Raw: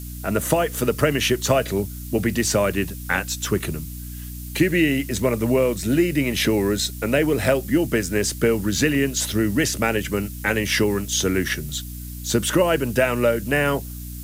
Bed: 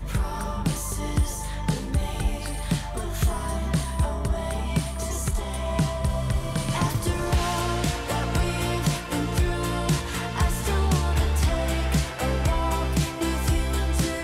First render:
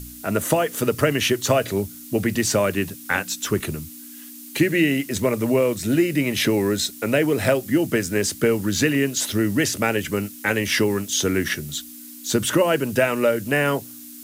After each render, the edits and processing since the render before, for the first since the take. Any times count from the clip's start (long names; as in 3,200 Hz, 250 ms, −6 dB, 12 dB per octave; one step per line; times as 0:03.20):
hum removal 60 Hz, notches 3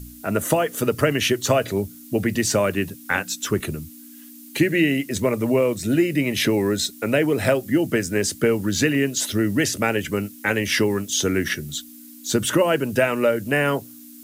broadband denoise 6 dB, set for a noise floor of −40 dBFS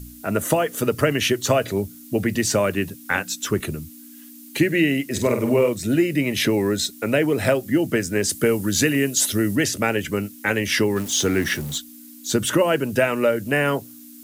0:05.07–0:05.69: flutter between parallel walls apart 8.3 metres, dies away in 0.42 s
0:08.29–0:09.56: parametric band 11,000 Hz +8 dB 1.3 octaves
0:10.96–0:11.78: converter with a step at zero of −31 dBFS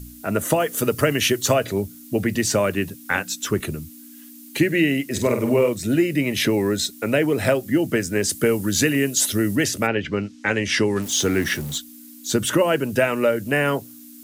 0:00.60–0:01.54: high-shelf EQ 5,700 Hz +5.5 dB
0:09.86–0:11.01: low-pass filter 4,000 Hz → 11,000 Hz 24 dB per octave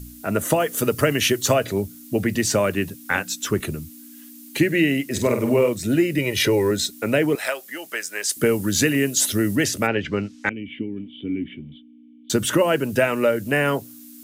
0:06.18–0:06.71: comb filter 2.1 ms
0:07.35–0:08.37: high-pass filter 930 Hz
0:10.49–0:12.30: formant resonators in series i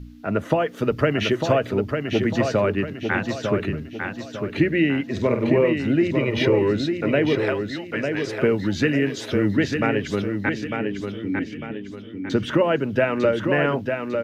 high-frequency loss of the air 260 metres
repeating echo 900 ms, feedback 39%, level −5.5 dB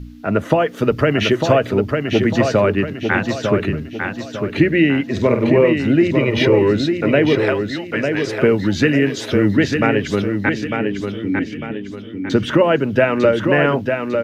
level +5.5 dB
brickwall limiter −2 dBFS, peak gain reduction 2.5 dB